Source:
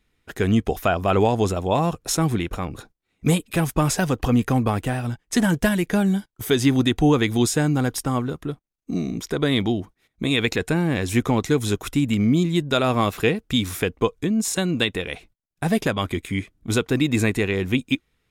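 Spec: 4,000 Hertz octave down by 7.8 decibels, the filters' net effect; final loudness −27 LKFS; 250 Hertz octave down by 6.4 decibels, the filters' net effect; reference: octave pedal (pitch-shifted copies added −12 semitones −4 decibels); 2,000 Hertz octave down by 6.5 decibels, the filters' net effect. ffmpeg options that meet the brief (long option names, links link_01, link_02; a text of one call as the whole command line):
ffmpeg -i in.wav -filter_complex "[0:a]equalizer=frequency=250:width_type=o:gain=-8.5,equalizer=frequency=2000:width_type=o:gain=-6.5,equalizer=frequency=4000:width_type=o:gain=-7.5,asplit=2[link_01][link_02];[link_02]asetrate=22050,aresample=44100,atempo=2,volume=-4dB[link_03];[link_01][link_03]amix=inputs=2:normalize=0,volume=-2dB" out.wav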